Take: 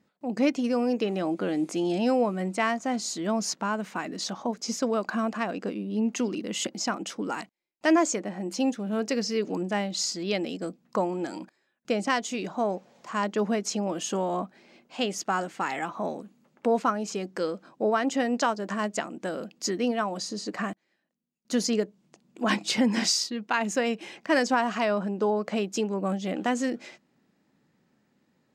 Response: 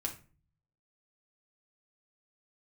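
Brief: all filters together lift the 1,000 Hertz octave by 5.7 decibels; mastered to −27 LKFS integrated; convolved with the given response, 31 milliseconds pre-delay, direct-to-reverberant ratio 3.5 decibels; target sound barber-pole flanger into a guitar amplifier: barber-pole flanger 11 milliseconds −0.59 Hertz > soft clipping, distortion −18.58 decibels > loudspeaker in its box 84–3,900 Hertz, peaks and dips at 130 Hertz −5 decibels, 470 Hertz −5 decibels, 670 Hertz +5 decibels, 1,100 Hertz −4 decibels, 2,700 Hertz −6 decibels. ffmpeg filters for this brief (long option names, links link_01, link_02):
-filter_complex "[0:a]equalizer=frequency=1000:width_type=o:gain=7.5,asplit=2[link_01][link_02];[1:a]atrim=start_sample=2205,adelay=31[link_03];[link_02][link_03]afir=irnorm=-1:irlink=0,volume=-4.5dB[link_04];[link_01][link_04]amix=inputs=2:normalize=0,asplit=2[link_05][link_06];[link_06]adelay=11,afreqshift=-0.59[link_07];[link_05][link_07]amix=inputs=2:normalize=1,asoftclip=threshold=-14.5dB,highpass=84,equalizer=frequency=130:width_type=q:width=4:gain=-5,equalizer=frequency=470:width_type=q:width=4:gain=-5,equalizer=frequency=670:width_type=q:width=4:gain=5,equalizer=frequency=1100:width_type=q:width=4:gain=-4,equalizer=frequency=2700:width_type=q:width=4:gain=-6,lowpass=frequency=3900:width=0.5412,lowpass=frequency=3900:width=1.3066,volume=2dB"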